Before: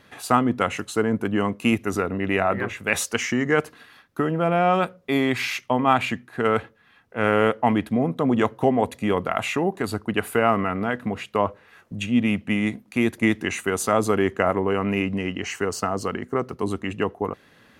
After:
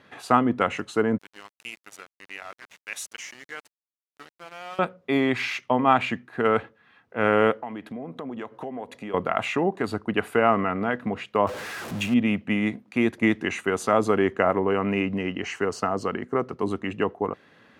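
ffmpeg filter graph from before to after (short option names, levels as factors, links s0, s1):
-filter_complex "[0:a]asettb=1/sr,asplit=3[s0][s1][s2];[s0]atrim=end=1.184[s3];[s1]atrim=start=1.18:end=4.79,asetpts=PTS-STARTPTS,afade=t=in:d=0.004:c=qsin,afade=t=out:st=3.606:d=0.004:c=qsin,aderivative,aeval=exprs='val(0)*gte(abs(val(0)),0.0112)':c=same[s4];[s2]atrim=start=4.786[s5];[s3][s4]acrossfade=d=0.004:c1=hsin:c2=qsin[s6];[s6][s5]acrossfade=d=0.004:c1=qsin:c2=hsin,asettb=1/sr,asplit=3[s7][s8][s9];[s7]atrim=end=7.624[s10];[s8]atrim=start=7.62:end=9.14,asetpts=PTS-STARTPTS,afade=t=in:d=0.004:c=qsin,afade=t=out:st=1.516:d=0.004:c=qsin,highpass=f=190:p=1,acompressor=threshold=0.0251:ratio=4:attack=3.2:release=140:knee=1:detection=peak[s11];[s9]atrim=start=9.136[s12];[s10][s11]acrossfade=d=0.004:c1=hsin:c2=qsin[s13];[s13][s12]acrossfade=d=0.004:c1=qsin:c2=hsin,asettb=1/sr,asplit=3[s14][s15][s16];[s14]atrim=end=11.474[s17];[s15]atrim=start=11.47:end=12.14,asetpts=PTS-STARTPTS,afade=t=in:d=0.004:c=qsin,afade=t=out:st=0.666:d=0.004:c=qsin,aeval=exprs='val(0)+0.5*0.0335*sgn(val(0))':c=same,highshelf=f=7500:g=11.5[s18];[s16]atrim=start=12.136[s19];[s17][s18]acrossfade=d=0.004:c1=hsin:c2=qsin[s20];[s20][s19]acrossfade=d=0.004:c1=qsin:c2=hsin,highpass=f=150:p=1,aemphasis=mode=reproduction:type=50fm"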